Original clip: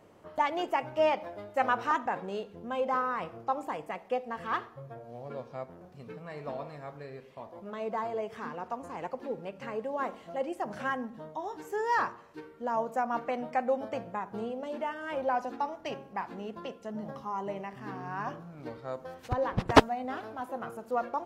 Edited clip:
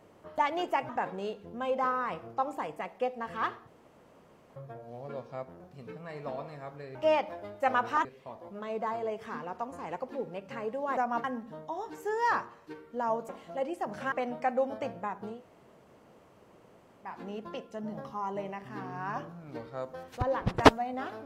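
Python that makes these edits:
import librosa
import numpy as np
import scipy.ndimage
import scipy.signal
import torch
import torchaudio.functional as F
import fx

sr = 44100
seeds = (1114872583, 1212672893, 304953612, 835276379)

y = fx.edit(x, sr, fx.move(start_s=0.89, length_s=1.1, to_s=7.16),
    fx.insert_room_tone(at_s=4.77, length_s=0.89),
    fx.swap(start_s=10.08, length_s=0.83, other_s=12.96, other_length_s=0.27),
    fx.room_tone_fill(start_s=14.43, length_s=1.78, crossfade_s=0.24), tone=tone)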